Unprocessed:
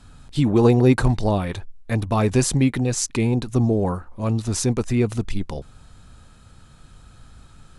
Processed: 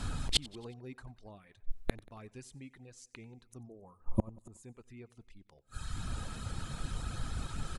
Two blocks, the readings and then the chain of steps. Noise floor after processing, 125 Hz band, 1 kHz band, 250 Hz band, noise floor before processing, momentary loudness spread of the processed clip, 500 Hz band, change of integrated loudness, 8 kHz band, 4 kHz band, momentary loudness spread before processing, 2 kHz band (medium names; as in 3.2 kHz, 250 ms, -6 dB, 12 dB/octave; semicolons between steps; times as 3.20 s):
-69 dBFS, -21.0 dB, -19.0 dB, -23.5 dB, -49 dBFS, 19 LU, -24.5 dB, -19.0 dB, -17.5 dB, -4.5 dB, 13 LU, -16.0 dB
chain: dynamic bell 2.1 kHz, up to +5 dB, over -44 dBFS, Q 1.1; reverb removal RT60 0.73 s; time-frequency box 3.68–4.64 s, 1.3–6.4 kHz -16 dB; inverted gate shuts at -24 dBFS, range -41 dB; on a send: feedback delay 92 ms, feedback 54%, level -22.5 dB; on the sum: trim +10.5 dB